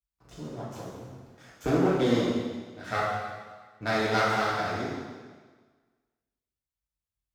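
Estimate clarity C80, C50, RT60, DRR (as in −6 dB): 2.0 dB, −0.5 dB, 1.5 s, −7.0 dB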